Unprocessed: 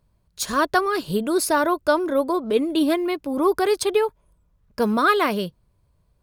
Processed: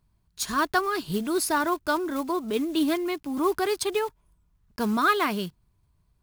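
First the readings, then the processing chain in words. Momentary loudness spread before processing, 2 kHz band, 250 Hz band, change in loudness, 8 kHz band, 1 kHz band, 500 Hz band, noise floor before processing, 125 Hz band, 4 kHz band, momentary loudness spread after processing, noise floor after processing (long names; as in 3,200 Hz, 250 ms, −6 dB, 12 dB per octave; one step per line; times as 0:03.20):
7 LU, −3.0 dB, −4.0 dB, −4.5 dB, −2.5 dB, −4.0 dB, −7.0 dB, −66 dBFS, can't be measured, −3.0 dB, 8 LU, −69 dBFS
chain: one scale factor per block 5 bits
parametric band 530 Hz −15 dB 0.35 octaves
level −3 dB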